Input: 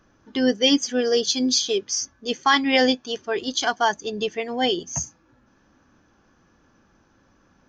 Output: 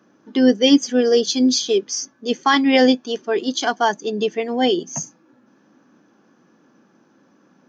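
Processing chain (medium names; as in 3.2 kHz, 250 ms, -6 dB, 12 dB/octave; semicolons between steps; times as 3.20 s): high-pass 160 Hz 24 dB/octave; peaking EQ 270 Hz +7 dB 2.6 oct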